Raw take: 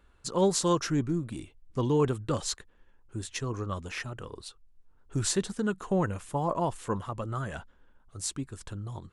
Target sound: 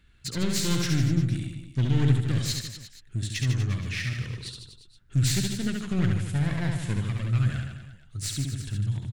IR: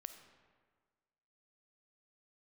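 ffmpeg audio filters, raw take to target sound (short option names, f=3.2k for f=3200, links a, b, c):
-af "aeval=exprs='clip(val(0),-1,0.0158)':c=same,equalizer=f=125:t=o:w=1:g=12,equalizer=f=500:t=o:w=1:g=-8,equalizer=f=1k:t=o:w=1:g=-12,equalizer=f=2k:t=o:w=1:g=7,equalizer=f=4k:t=o:w=1:g=6,aecho=1:1:70|150.5|243.1|349.5|472:0.631|0.398|0.251|0.158|0.1"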